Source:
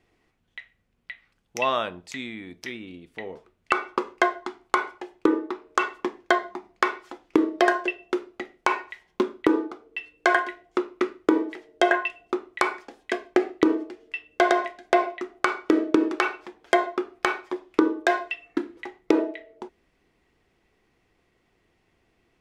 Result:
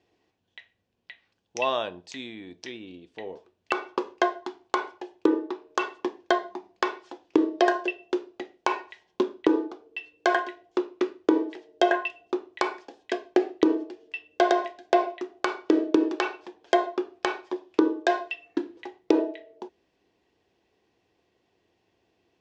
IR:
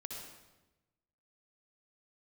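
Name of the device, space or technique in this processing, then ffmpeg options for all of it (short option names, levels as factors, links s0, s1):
car door speaker: -af "highpass=110,equalizer=f=150:t=q:w=4:g=-9,equalizer=f=230:t=q:w=4:g=-5,equalizer=f=1300:t=q:w=4:g=-10,equalizer=f=2100:t=q:w=4:g=-9,lowpass=f=6700:w=0.5412,lowpass=f=6700:w=1.3066"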